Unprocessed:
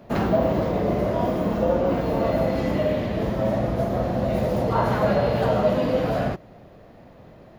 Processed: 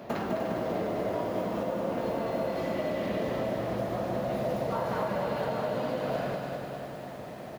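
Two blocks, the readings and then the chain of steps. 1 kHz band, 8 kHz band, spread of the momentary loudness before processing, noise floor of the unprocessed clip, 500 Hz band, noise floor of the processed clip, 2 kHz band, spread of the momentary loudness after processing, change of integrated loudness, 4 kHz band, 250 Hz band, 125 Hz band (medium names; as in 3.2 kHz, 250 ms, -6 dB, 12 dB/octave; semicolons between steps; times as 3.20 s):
-7.0 dB, no reading, 4 LU, -48 dBFS, -8.0 dB, -41 dBFS, -5.5 dB, 6 LU, -9.0 dB, -5.5 dB, -9.5 dB, -12.0 dB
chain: high-pass 280 Hz 6 dB/octave; compression 16:1, threshold -35 dBFS, peak gain reduction 19 dB; feedback delay 299 ms, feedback 60%, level -8 dB; bit-crushed delay 204 ms, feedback 55%, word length 10-bit, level -5 dB; trim +5.5 dB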